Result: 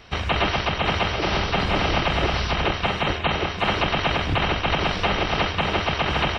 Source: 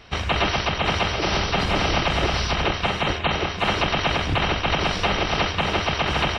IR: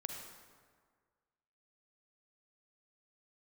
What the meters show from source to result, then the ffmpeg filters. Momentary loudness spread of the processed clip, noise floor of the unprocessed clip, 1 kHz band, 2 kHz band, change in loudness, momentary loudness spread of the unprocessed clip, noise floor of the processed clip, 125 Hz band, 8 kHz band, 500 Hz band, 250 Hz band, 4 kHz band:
2 LU, -30 dBFS, 0.0 dB, 0.0 dB, -0.5 dB, 2 LU, -30 dBFS, 0.0 dB, -6.0 dB, 0.0 dB, 0.0 dB, -1.0 dB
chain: -filter_complex "[0:a]acrossover=split=4700[a][b];[b]acompressor=threshold=-48dB:ratio=4:attack=1:release=60[c];[a][c]amix=inputs=2:normalize=0"

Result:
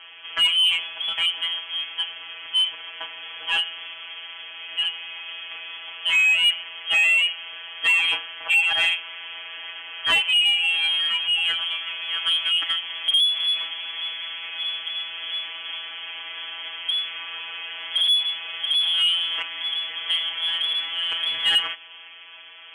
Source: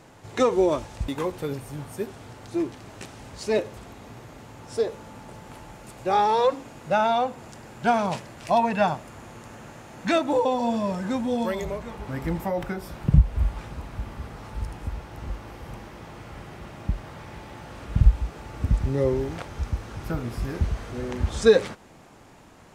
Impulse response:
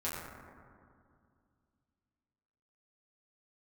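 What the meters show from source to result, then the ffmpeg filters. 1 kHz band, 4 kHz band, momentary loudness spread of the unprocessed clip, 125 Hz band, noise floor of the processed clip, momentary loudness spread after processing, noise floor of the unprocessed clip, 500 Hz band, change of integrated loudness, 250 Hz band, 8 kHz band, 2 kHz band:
-10.5 dB, +23.5 dB, 22 LU, under -30 dB, -43 dBFS, 17 LU, -50 dBFS, -23.0 dB, +5.0 dB, under -25 dB, +3.0 dB, +13.5 dB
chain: -filter_complex "[0:a]afftfilt=real='hypot(re,im)*cos(PI*b)':imag='0':win_size=1024:overlap=0.75,lowpass=f=2.9k:t=q:w=0.5098,lowpass=f=2.9k:t=q:w=0.6013,lowpass=f=2.9k:t=q:w=0.9,lowpass=f=2.9k:t=q:w=2.563,afreqshift=-3400,asplit=2[a][b];[b]highpass=f=720:p=1,volume=17dB,asoftclip=type=tanh:threshold=-10.5dB[c];[a][c]amix=inputs=2:normalize=0,lowpass=f=1.6k:p=1,volume=-6dB,volume=4.5dB"

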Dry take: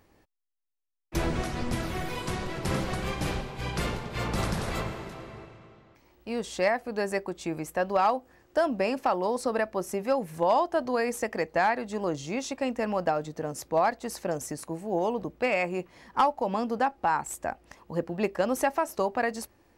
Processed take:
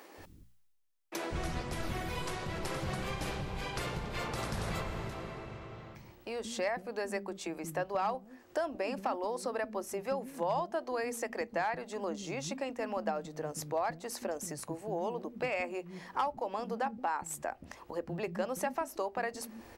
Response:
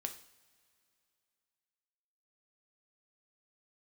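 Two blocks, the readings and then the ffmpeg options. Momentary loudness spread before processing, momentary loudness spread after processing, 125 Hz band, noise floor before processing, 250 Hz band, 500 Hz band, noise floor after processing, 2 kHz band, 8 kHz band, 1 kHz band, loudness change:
9 LU, 7 LU, -6.5 dB, -63 dBFS, -8.5 dB, -7.5 dB, -58 dBFS, -7.0 dB, -4.0 dB, -8.0 dB, -7.5 dB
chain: -filter_complex "[0:a]areverse,acompressor=mode=upward:threshold=-46dB:ratio=2.5,areverse,bandreject=f=60:t=h:w=6,bandreject=f=120:t=h:w=6,bandreject=f=180:t=h:w=6,bandreject=f=240:t=h:w=6,acompressor=threshold=-45dB:ratio=2,acrossover=split=260[a][b];[a]adelay=180[c];[c][b]amix=inputs=2:normalize=0,volume=4.5dB"

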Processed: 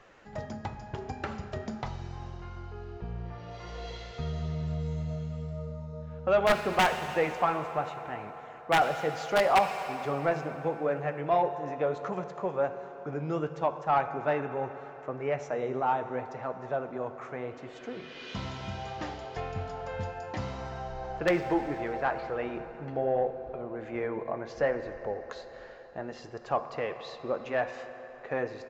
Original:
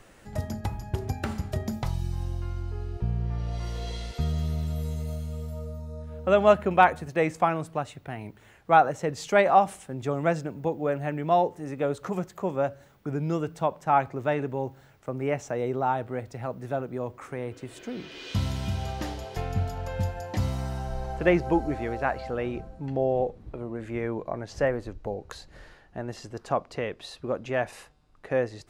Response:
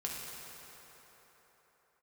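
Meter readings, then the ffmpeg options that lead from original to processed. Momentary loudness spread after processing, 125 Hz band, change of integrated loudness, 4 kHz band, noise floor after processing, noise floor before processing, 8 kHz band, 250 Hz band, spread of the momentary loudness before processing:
15 LU, -7.0 dB, -3.5 dB, +0.5 dB, -47 dBFS, -55 dBFS, -4.0 dB, -5.0 dB, 15 LU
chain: -filter_complex "[0:a]aresample=16000,aresample=44100,flanger=delay=1.6:depth=7.4:regen=-63:speed=0.72:shape=sinusoidal,aeval=exprs='(mod(4.73*val(0)+1,2)-1)/4.73':c=same,asplit=2[a][b];[1:a]atrim=start_sample=2205[c];[b][c]afir=irnorm=-1:irlink=0,volume=-8.5dB[d];[a][d]amix=inputs=2:normalize=0,asplit=2[e][f];[f]highpass=f=720:p=1,volume=13dB,asoftclip=type=tanh:threshold=-9.5dB[g];[e][g]amix=inputs=2:normalize=0,lowpass=f=1.7k:p=1,volume=-6dB,volume=-3.5dB"

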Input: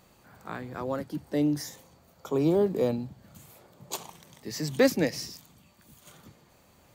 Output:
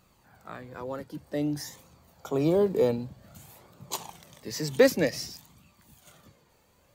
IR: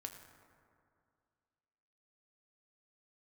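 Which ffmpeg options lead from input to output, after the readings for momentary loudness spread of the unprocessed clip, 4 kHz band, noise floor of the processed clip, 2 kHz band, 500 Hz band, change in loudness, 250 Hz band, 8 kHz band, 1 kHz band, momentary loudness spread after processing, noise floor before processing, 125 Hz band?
18 LU, +1.0 dB, -65 dBFS, +1.5 dB, +2.0 dB, +1.0 dB, -2.0 dB, +1.0 dB, -0.5 dB, 21 LU, -61 dBFS, -0.5 dB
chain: -af "dynaudnorm=f=300:g=11:m=6dB,flanger=delay=0.7:depth=1.6:regen=53:speed=0.53:shape=triangular"

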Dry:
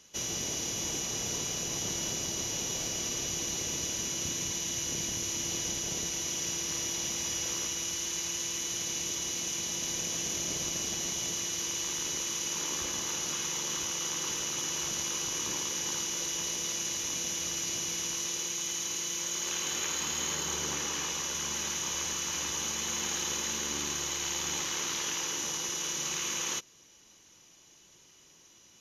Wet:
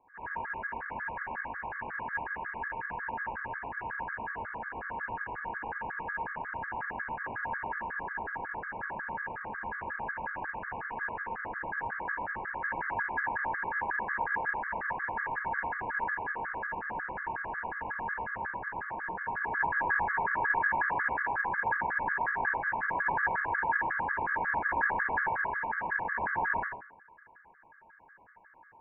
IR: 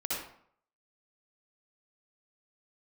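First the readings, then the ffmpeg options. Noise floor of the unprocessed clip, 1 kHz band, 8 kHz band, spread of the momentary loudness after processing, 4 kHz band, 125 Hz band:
-59 dBFS, +12.5 dB, under -40 dB, 9 LU, under -35 dB, -4.5 dB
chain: -filter_complex "[0:a]highpass=f=1.5k:t=q:w=16,lowpass=f=2.4k:t=q:w=0.5098,lowpass=f=2.4k:t=q:w=0.6013,lowpass=f=2.4k:t=q:w=0.9,lowpass=f=2.4k:t=q:w=2.563,afreqshift=-2800[a];[1:a]atrim=start_sample=2205,asetrate=41895,aresample=44100[b];[a][b]afir=irnorm=-1:irlink=0,aeval=exprs='val(0)*sin(2*PI*370*n/s)':c=same,afftfilt=real='re*gt(sin(2*PI*5.5*pts/sr)*(1-2*mod(floor(b*sr/1024/1100),2)),0)':imag='im*gt(sin(2*PI*5.5*pts/sr)*(1-2*mod(floor(b*sr/1024/1100),2)),0)':win_size=1024:overlap=0.75"

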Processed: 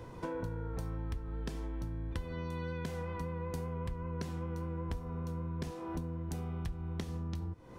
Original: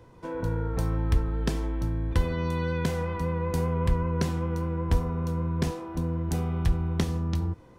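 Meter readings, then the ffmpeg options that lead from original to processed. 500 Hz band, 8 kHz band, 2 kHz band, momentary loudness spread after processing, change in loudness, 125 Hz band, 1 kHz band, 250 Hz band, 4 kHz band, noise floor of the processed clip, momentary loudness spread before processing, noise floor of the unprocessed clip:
-10.0 dB, -11.5 dB, -10.5 dB, 2 LU, -11.0 dB, -11.0 dB, -10.0 dB, -10.5 dB, -11.5 dB, -47 dBFS, 4 LU, -51 dBFS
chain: -af "acompressor=threshold=-41dB:ratio=8,volume=5dB"

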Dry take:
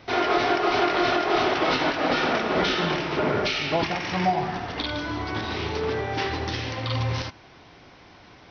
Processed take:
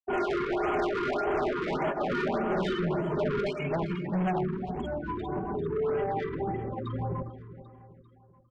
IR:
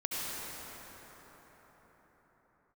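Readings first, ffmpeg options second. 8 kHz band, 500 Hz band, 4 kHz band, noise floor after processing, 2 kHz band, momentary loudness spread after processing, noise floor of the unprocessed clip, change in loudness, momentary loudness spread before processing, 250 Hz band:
n/a, -3.0 dB, -17.5 dB, -58 dBFS, -10.5 dB, 6 LU, -50 dBFS, -6.0 dB, 7 LU, -3.0 dB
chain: -filter_complex "[0:a]tiltshelf=f=1.3k:g=4,afftfilt=real='re*gte(hypot(re,im),0.1)':imag='im*gte(hypot(re,im),0.1)':win_size=1024:overlap=0.75,aecho=1:1:5:0.71,asplit=2[a][b];[b]acompressor=threshold=-35dB:ratio=6,volume=-2dB[c];[a][c]amix=inputs=2:normalize=0,flanger=delay=5.2:depth=1.9:regen=-48:speed=0.43:shape=triangular,asoftclip=type=tanh:threshold=-25dB,aecho=1:1:395|790|1185|1580:0.224|0.101|0.0453|0.0204,afftfilt=real='re*(1-between(b*sr/1024,640*pow(4800/640,0.5+0.5*sin(2*PI*1.7*pts/sr))/1.41,640*pow(4800/640,0.5+0.5*sin(2*PI*1.7*pts/sr))*1.41))':imag='im*(1-between(b*sr/1024,640*pow(4800/640,0.5+0.5*sin(2*PI*1.7*pts/sr))/1.41,640*pow(4800/640,0.5+0.5*sin(2*PI*1.7*pts/sr))*1.41))':win_size=1024:overlap=0.75"

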